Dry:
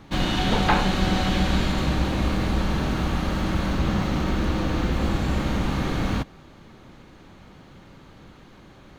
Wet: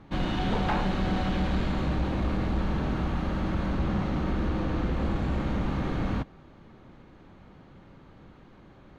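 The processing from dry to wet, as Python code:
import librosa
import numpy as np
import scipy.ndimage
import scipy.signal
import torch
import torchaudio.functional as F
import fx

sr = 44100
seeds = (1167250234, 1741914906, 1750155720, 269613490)

y = np.clip(x, -10.0 ** (-17.5 / 20.0), 10.0 ** (-17.5 / 20.0))
y = fx.lowpass(y, sr, hz=1700.0, slope=6)
y = F.gain(torch.from_numpy(y), -3.5).numpy()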